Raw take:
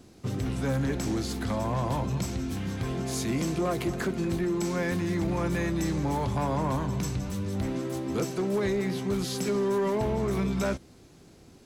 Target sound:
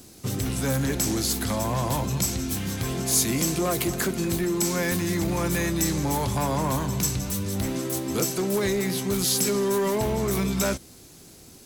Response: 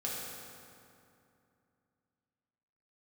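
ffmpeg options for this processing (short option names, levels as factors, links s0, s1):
-af "aemphasis=mode=production:type=75fm,volume=1.41"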